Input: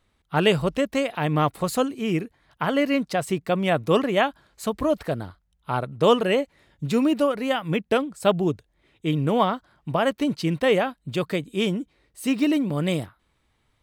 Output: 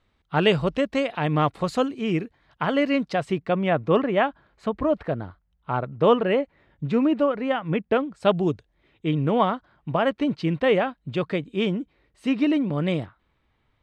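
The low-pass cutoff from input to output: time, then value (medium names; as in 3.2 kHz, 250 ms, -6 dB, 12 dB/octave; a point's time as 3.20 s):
3.05 s 4.8 kHz
3.74 s 2.3 kHz
7.99 s 2.3 kHz
8.46 s 6.1 kHz
9.07 s 3.2 kHz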